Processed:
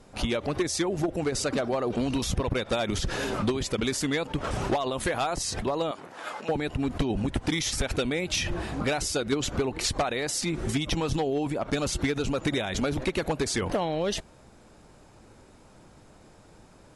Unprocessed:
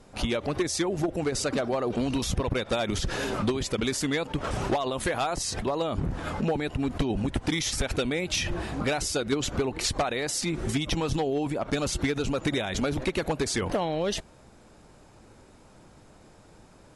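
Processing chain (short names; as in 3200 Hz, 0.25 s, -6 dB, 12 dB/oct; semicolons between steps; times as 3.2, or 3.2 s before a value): 5.91–6.49 HPF 620 Hz 12 dB/oct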